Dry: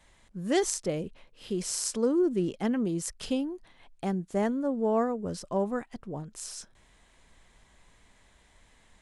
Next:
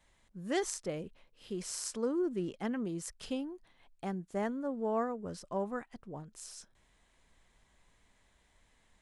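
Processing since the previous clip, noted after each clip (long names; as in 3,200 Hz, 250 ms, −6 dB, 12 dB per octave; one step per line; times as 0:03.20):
dynamic equaliser 1,400 Hz, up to +5 dB, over −46 dBFS, Q 0.73
level −8 dB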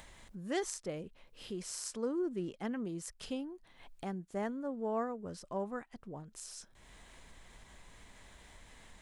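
upward compression, threshold −39 dBFS
level −2.5 dB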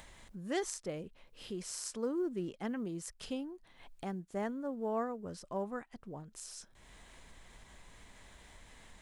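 floating-point word with a short mantissa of 6 bits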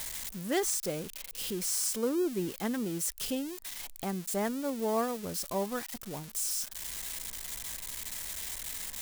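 spike at every zero crossing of −34 dBFS
level +5 dB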